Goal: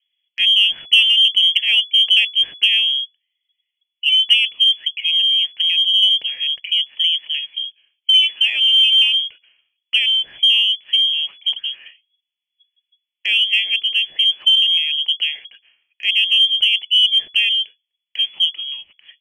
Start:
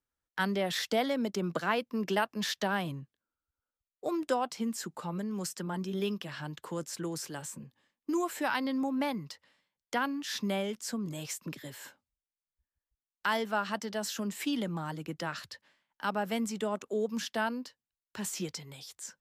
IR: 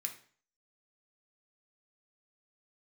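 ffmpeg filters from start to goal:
-filter_complex "[0:a]aeval=exprs='0.158*(cos(1*acos(clip(val(0)/0.158,-1,1)))-cos(1*PI/2))+0.0282*(cos(2*acos(clip(val(0)/0.158,-1,1)))-cos(2*PI/2))':channel_layout=same,lowpass=frequency=2900:width_type=q:width=0.5098,lowpass=frequency=2900:width_type=q:width=0.6013,lowpass=frequency=2900:width_type=q:width=0.9,lowpass=frequency=2900:width_type=q:width=2.563,afreqshift=-3400,acrossover=split=860|2500[link_01][link_02][link_03];[link_02]acompressor=threshold=-50dB:ratio=6[link_04];[link_01][link_04][link_03]amix=inputs=3:normalize=0,aexciter=amount=12.5:drive=5.3:freq=2200,aemphasis=mode=production:type=50fm,volume=-3.5dB"

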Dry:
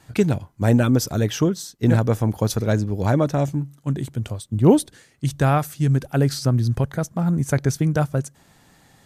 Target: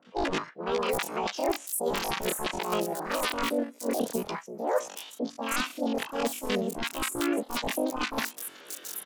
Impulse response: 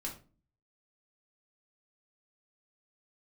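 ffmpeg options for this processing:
-filter_complex "[0:a]highpass=270,highshelf=frequency=2900:gain=-6,areverse,acompressor=threshold=-35dB:ratio=10,areverse,aresample=16000,aresample=44100,aeval=exprs='(mod(23.7*val(0)+1,2)-1)/23.7':channel_layout=same,asplit=4[link_01][link_02][link_03][link_04];[link_02]asetrate=35002,aresample=44100,atempo=1.25992,volume=-17dB[link_05];[link_03]asetrate=37084,aresample=44100,atempo=1.18921,volume=0dB[link_06];[link_04]asetrate=52444,aresample=44100,atempo=0.840896,volume=-16dB[link_07];[link_01][link_05][link_06][link_07]amix=inputs=4:normalize=0,acrossover=split=480|3000[link_08][link_09][link_10];[link_09]adelay=50[link_11];[link_10]adelay=740[link_12];[link_08][link_11][link_12]amix=inputs=3:normalize=0,asetrate=88200,aresample=44100,atempo=0.5,volume=8dB"

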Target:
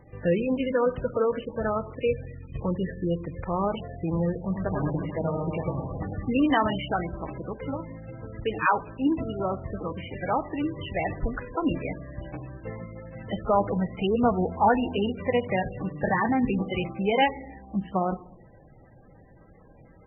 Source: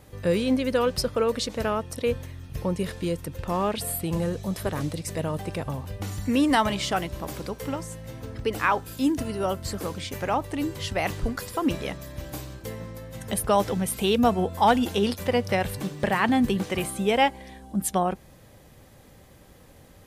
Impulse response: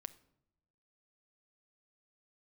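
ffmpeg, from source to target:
-filter_complex "[0:a]asettb=1/sr,asplit=3[link_01][link_02][link_03];[link_01]atrim=end=4.374[link_04];[link_02]atrim=start=4.37:end=6.38,asetpts=PTS-STARTPTS,afade=type=in:duration=0.004:curve=qsin,afade=type=out:start_time=2.006:duration=0.004:curve=qsin,aecho=1:1:100|220|364|536.8|744.2:0.631|0.398|0.251|0.158|0.1,atrim=end_sample=88641[link_05];[link_03]atrim=start=6.376[link_06];[link_04][link_05]acrossfade=duration=0.004:curve1=hsin:curve2=qsin[link_07];[link_07][link_06]acrossfade=duration=0.004:curve1=qsin:curve2=hsin[link_08];[1:a]atrim=start_sample=2205[link_09];[link_08][link_09]afir=irnorm=-1:irlink=0,volume=4dB" -ar 22050 -c:a libmp3lame -b:a 8k

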